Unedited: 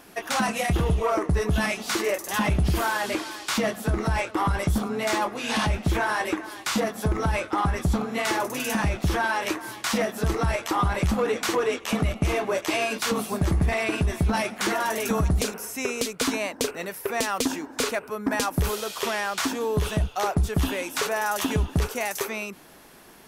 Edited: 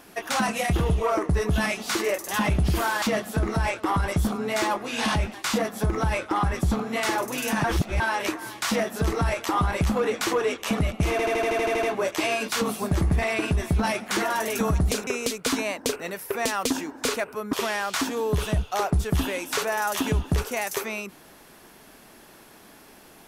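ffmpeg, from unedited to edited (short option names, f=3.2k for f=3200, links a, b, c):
-filter_complex "[0:a]asplit=16[a][b][c][d][e][f][g][h][i][j][k][l][m][n][o][p];[a]atrim=end=3.022[q];[b]atrim=start=3.528:end=5.852[r];[c]atrim=start=6.558:end=8.862[s];[d]atrim=start=8.858:end=9.222,asetpts=PTS-STARTPTS,areverse[t];[e]atrim=start=9.218:end=12.412[u];[f]atrim=start=12.328:end=12.412[v];[g]atrim=start=12.328:end=12.412[w];[h]atrim=start=12.328:end=12.412[x];[i]atrim=start=12.328:end=12.412[y];[j]atrim=start=12.328:end=12.412[z];[k]atrim=start=12.328:end=12.412[aa];[l]atrim=start=12.328:end=12.412[ab];[m]atrim=start=12.328:end=12.412[ac];[n]atrim=start=12.328:end=15.572[ad];[o]atrim=start=15.818:end=18.282[ae];[p]atrim=start=18.968[af];[q][r]acrossfade=d=0.004:c1=hsin:c2=hsin[ag];[ag][s]acrossfade=d=0.004:c1=hsin:c2=hsin[ah];[ah][t]acrossfade=d=0.004:c1=hsin:c2=hsin[ai];[ai][u]acrossfade=d=0.004:c1=hsin:c2=hsin[aj];[aj][v]acrossfade=d=0.004:c1=hsin:c2=hsin[ak];[ak][w]acrossfade=d=0.004:c1=hsin:c2=hsin[al];[al][x]acrossfade=d=0.004:c1=hsin:c2=hsin[am];[am][y]acrossfade=d=0.004:c1=hsin:c2=hsin[an];[an][z]acrossfade=d=0.004:c1=hsin:c2=hsin[ao];[ao][aa]acrossfade=d=0.004:c1=hsin:c2=hsin[ap];[ap][ab]acrossfade=d=0.004:c1=hsin:c2=hsin[aq];[aq][ac]acrossfade=d=0.004:c1=hsin:c2=hsin[ar];[ar][ad]acrossfade=d=0.004:c1=hsin:c2=hsin[as];[as][ae]acrossfade=d=0.004:c1=hsin:c2=hsin[at];[at][af]acrossfade=d=0.004:c1=hsin:c2=hsin"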